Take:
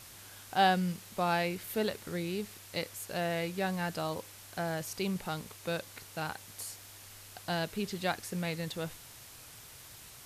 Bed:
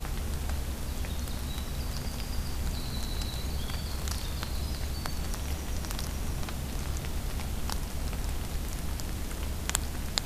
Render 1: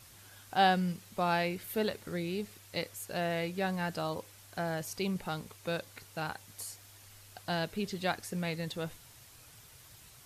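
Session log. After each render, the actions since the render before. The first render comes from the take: denoiser 6 dB, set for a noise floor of -52 dBFS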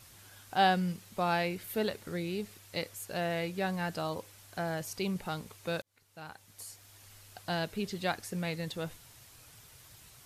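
5.82–7.08 fade in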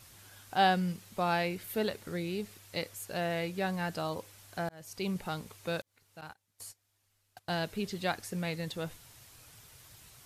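4.69–5.09 fade in; 6.21–7.63 gate -48 dBFS, range -20 dB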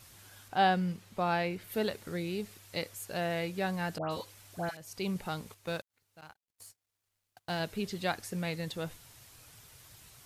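0.48–1.72 high shelf 4900 Hz -8.5 dB; 3.98–4.77 dispersion highs, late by 0.129 s, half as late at 1800 Hz; 5.54–7.6 G.711 law mismatch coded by A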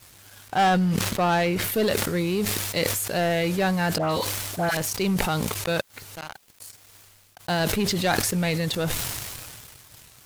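sample leveller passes 3; sustainer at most 26 dB/s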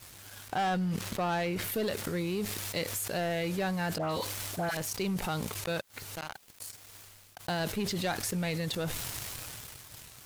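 limiter -15.5 dBFS, peak gain reduction 10.5 dB; compressor 2:1, threshold -36 dBFS, peak gain reduction 9.5 dB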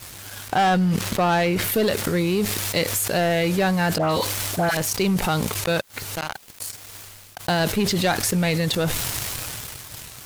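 gain +11 dB

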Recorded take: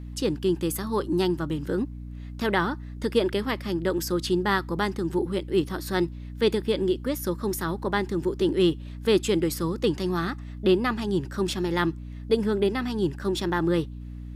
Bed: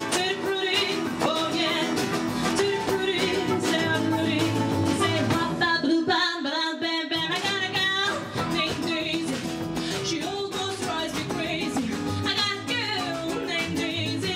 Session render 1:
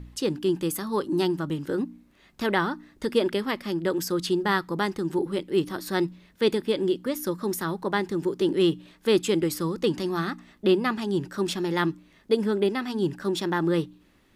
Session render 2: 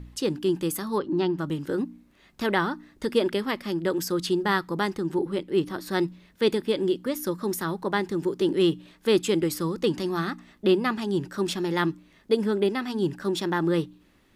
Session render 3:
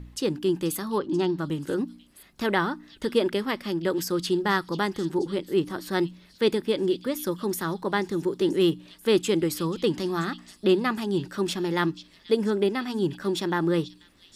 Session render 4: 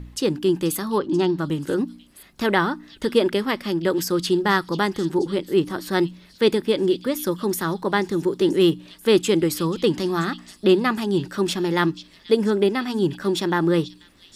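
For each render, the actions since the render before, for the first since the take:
de-hum 60 Hz, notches 5
0.98–1.39 air absorption 190 m; 4.98–5.91 high shelf 4300 Hz -5 dB
delay with a stepping band-pass 0.485 s, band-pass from 4100 Hz, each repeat 0.7 oct, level -11.5 dB
gain +4.5 dB

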